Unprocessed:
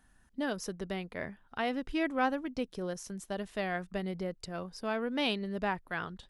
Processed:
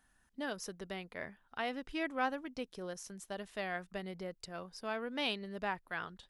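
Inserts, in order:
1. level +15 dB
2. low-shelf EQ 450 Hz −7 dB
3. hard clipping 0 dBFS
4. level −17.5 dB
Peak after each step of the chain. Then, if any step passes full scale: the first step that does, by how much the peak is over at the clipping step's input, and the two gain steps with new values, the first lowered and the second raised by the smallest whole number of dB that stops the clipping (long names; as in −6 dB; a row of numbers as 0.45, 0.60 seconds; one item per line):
−3.0, −3.5, −3.5, −21.0 dBFS
no step passes full scale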